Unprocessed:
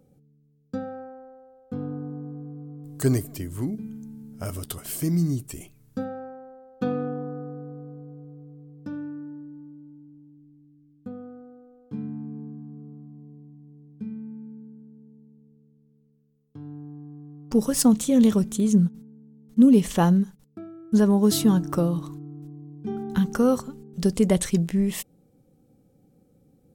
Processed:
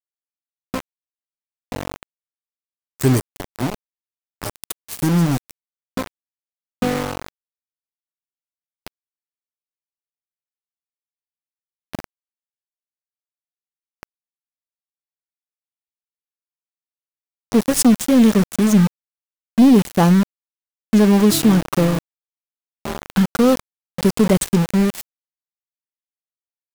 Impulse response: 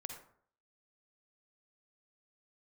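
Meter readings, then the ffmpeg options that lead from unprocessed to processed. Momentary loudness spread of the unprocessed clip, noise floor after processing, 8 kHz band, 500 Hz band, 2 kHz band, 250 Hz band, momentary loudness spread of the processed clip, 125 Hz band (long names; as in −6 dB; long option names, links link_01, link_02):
23 LU, below −85 dBFS, +5.5 dB, +5.5 dB, +10.5 dB, +5.0 dB, 20 LU, +5.5 dB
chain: -af "aeval=exprs='val(0)*gte(abs(val(0)),0.0531)':channel_layout=same,aeval=exprs='(tanh(4.47*val(0)+0.15)-tanh(0.15))/4.47':channel_layout=same,volume=7.5dB"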